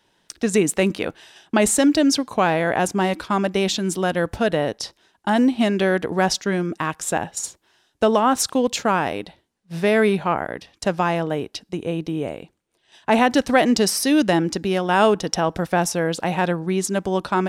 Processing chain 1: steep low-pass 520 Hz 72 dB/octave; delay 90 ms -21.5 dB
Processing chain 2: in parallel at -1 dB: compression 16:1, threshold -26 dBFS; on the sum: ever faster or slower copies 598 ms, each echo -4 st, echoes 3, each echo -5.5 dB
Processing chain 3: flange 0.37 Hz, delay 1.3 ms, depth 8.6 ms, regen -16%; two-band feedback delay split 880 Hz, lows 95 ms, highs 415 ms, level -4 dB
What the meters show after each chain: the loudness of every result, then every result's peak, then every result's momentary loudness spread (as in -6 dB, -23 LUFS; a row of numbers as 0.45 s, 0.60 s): -23.5 LUFS, -18.0 LUFS, -23.0 LUFS; -8.5 dBFS, -2.0 dBFS, -6.0 dBFS; 13 LU, 7 LU, 10 LU